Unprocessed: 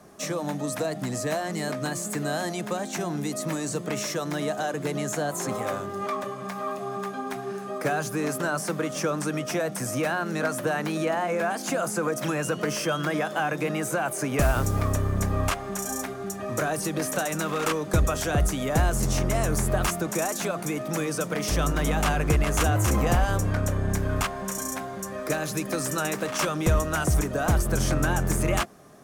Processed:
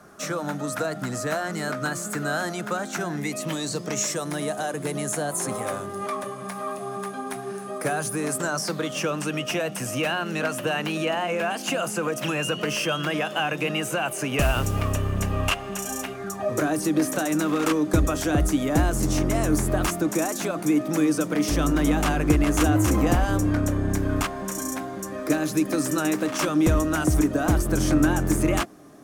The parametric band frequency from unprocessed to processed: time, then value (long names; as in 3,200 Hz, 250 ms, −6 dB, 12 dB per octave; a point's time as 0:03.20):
parametric band +14 dB 0.29 octaves
0:02.99 1,400 Hz
0:04.25 9,800 Hz
0:08.28 9,800 Hz
0:08.97 2,800 Hz
0:16.13 2,800 Hz
0:16.63 300 Hz